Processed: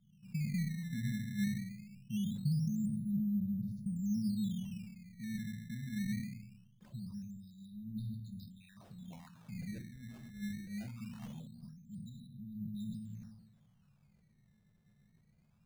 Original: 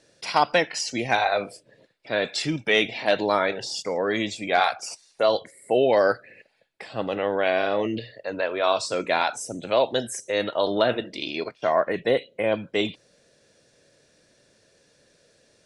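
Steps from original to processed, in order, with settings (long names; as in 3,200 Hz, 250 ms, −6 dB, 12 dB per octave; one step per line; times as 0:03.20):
thirty-one-band graphic EQ 100 Hz −4 dB, 4,000 Hz +7 dB, 6,300 Hz +10 dB
convolution reverb RT60 0.85 s, pre-delay 6 ms, DRR 7 dB
transient designer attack −2 dB, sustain +4 dB
low-pass filter sweep 210 Hz → 1,100 Hz, 0:06.10–0:06.74
dynamic equaliser 8,600 Hz, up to −6 dB, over −55 dBFS, Q 1.2
downward compressor 3 to 1, threshold −31 dBFS, peak gain reduction 15 dB
linear-phase brick-wall band-stop 230–3,600 Hz
sample-and-hold swept by an LFO 13×, swing 160% 0.22 Hz
level that may fall only so fast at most 52 dB per second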